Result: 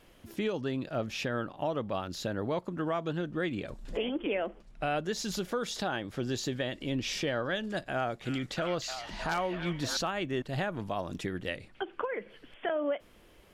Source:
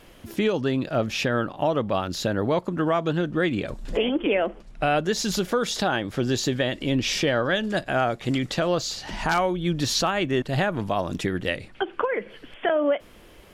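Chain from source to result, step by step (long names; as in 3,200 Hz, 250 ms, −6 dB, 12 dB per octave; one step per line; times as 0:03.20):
0:07.94–0:09.97: echo through a band-pass that steps 312 ms, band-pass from 2,500 Hz, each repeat −0.7 octaves, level −1.5 dB
level −9 dB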